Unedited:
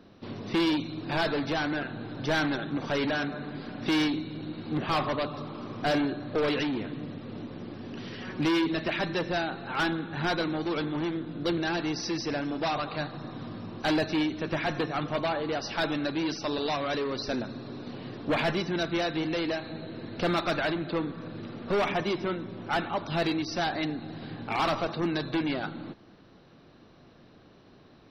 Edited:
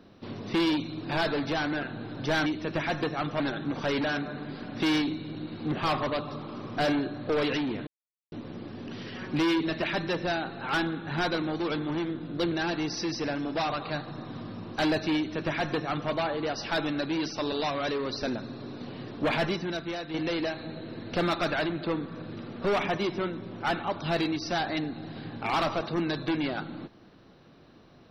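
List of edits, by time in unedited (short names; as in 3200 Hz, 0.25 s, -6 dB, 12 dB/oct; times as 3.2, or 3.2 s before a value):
6.93–7.38 mute
14.23–15.17 copy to 2.46
18.56–19.2 fade out quadratic, to -7 dB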